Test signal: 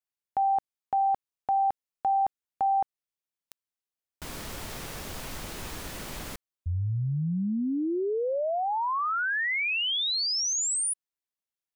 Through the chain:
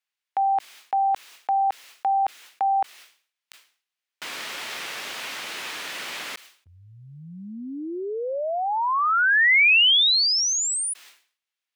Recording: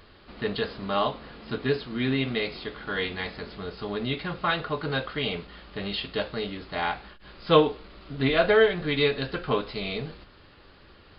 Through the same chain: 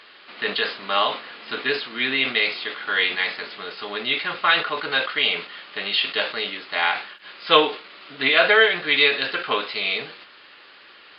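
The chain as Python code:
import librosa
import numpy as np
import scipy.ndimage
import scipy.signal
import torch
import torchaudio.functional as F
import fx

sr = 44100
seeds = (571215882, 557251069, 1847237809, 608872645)

y = scipy.signal.sosfilt(scipy.signal.butter(2, 290.0, 'highpass', fs=sr, output='sos'), x)
y = fx.peak_eq(y, sr, hz=2500.0, db=15.0, octaves=2.8)
y = fx.sustainer(y, sr, db_per_s=130.0)
y = F.gain(torch.from_numpy(y), -3.0).numpy()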